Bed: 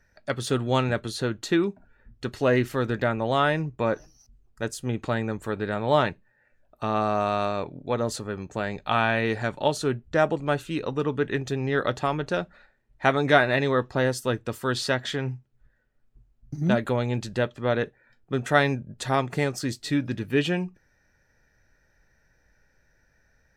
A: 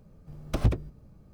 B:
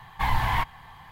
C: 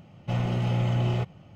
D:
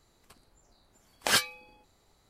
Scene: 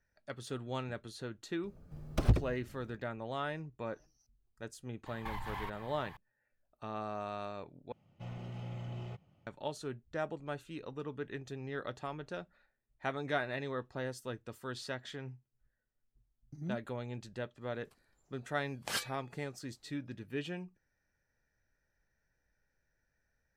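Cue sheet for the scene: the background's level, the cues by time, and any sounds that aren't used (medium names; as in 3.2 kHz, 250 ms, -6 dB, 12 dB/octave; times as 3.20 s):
bed -15.5 dB
1.64 s: add A -3 dB
5.06 s: add B -5 dB + compression 16:1, threshold -31 dBFS
7.92 s: replace with C -17.5 dB
17.61 s: add D -11.5 dB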